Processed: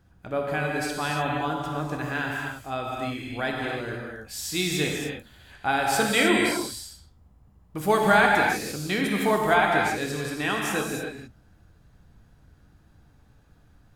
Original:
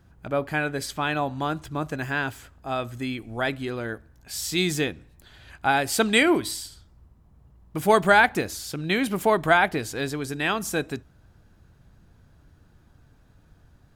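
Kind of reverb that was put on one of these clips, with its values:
reverb whose tail is shaped and stops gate 330 ms flat, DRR −1.5 dB
level −4 dB

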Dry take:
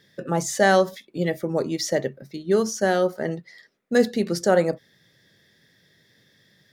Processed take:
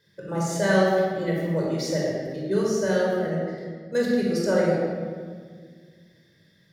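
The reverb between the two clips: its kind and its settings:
rectangular room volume 2,400 cubic metres, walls mixed, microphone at 5 metres
level −10 dB

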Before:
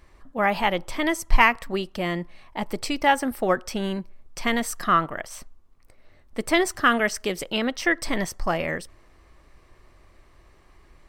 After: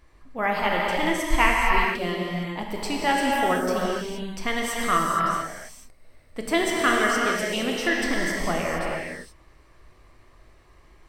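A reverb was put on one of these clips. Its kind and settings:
reverb whose tail is shaped and stops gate 490 ms flat, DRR −3 dB
level −4 dB

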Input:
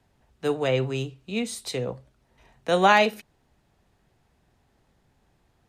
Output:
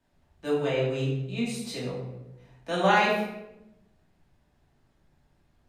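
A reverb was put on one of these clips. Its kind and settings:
rectangular room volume 310 cubic metres, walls mixed, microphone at 2.6 metres
level −10.5 dB

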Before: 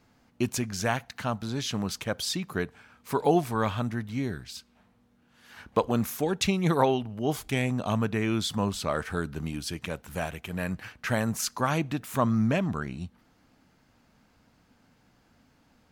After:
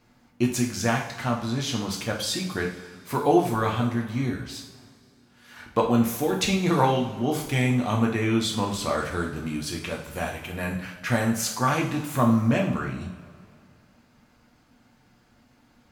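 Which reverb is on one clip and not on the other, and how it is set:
coupled-rooms reverb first 0.51 s, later 2.3 s, from −16 dB, DRR −1 dB

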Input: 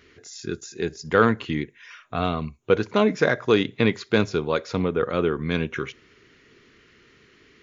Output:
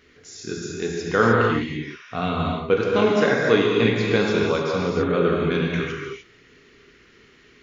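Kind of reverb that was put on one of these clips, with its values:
reverb whose tail is shaped and stops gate 330 ms flat, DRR −3 dB
level −2 dB

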